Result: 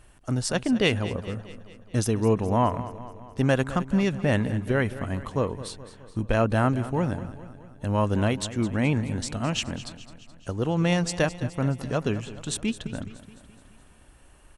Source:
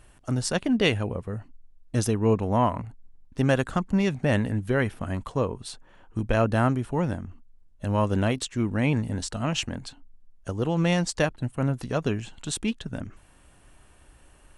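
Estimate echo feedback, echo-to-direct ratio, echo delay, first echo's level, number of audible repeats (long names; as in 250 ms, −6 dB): 57%, −13.5 dB, 212 ms, −15.0 dB, 5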